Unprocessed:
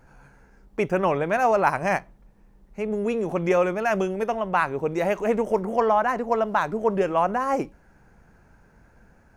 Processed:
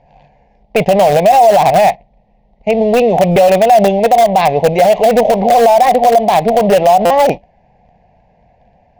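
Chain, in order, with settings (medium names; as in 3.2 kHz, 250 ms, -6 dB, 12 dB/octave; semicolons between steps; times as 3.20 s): waveshaping leveller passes 2; low-pass 4.2 kHz 24 dB/octave; bass shelf 84 Hz -6.5 dB; speed mistake 24 fps film run at 25 fps; FFT filter 180 Hz 0 dB, 340 Hz -11 dB, 730 Hz +12 dB, 1.4 kHz -27 dB, 2 kHz -1 dB; in parallel at -12 dB: integer overflow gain 12.5 dB; on the sum: peak limiter -9 dBFS, peak gain reduction 11 dB; buffer glitch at 3.31/7.05 s, samples 256, times 8; trim +8 dB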